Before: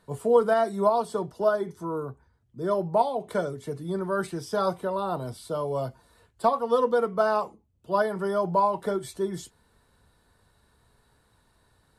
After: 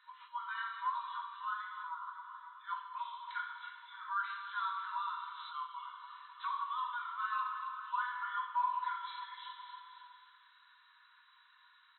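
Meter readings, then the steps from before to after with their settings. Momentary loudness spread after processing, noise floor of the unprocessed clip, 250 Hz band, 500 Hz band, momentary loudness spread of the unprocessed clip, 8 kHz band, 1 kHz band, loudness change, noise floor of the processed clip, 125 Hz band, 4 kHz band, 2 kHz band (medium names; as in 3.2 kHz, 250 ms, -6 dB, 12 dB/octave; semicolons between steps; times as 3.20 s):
13 LU, -66 dBFS, under -40 dB, under -40 dB, 10 LU, under -30 dB, -8.0 dB, -13.0 dB, -65 dBFS, under -40 dB, -5.0 dB, -4.0 dB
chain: on a send: feedback delay 274 ms, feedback 51%, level -14.5 dB; on the sum: two-slope reverb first 0.81 s, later 2.9 s, DRR -1.5 dB; compression 2:1, threshold -38 dBFS, peak gain reduction 15 dB; FFT band-pass 940–4100 Hz; trim +2 dB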